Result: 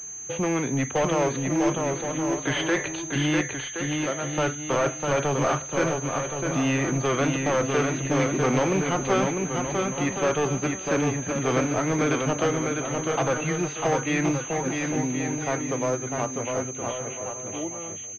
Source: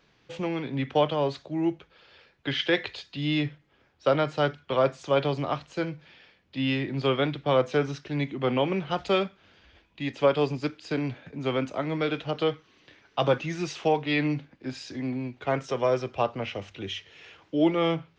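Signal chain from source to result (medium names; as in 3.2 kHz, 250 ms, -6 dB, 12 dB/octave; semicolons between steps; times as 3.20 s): fade out at the end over 5.85 s; dynamic bell 1.5 kHz, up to +4 dB, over -39 dBFS, Q 0.86; in parallel at +2 dB: compression, threshold -37 dBFS, peak gain reduction 20 dB; 3.41–4.35 s: on the sum: feedback comb 130 Hz, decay 1.7 s, mix 80%; hard clipper -23 dBFS, distortion -7 dB; on a send: bouncing-ball echo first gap 650 ms, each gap 0.65×, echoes 5; on the sum: class-D stage that switches slowly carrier 6.3 kHz; trim +2.5 dB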